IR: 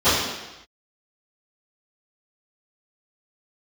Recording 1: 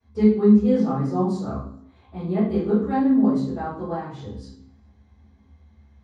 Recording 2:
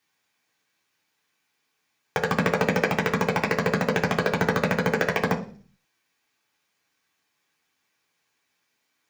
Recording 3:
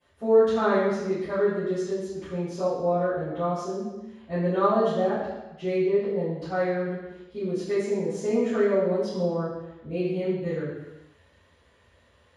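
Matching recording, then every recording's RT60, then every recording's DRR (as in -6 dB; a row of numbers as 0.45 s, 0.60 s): 3; 0.75 s, 0.45 s, no single decay rate; -17.5 dB, -1.5 dB, -21.5 dB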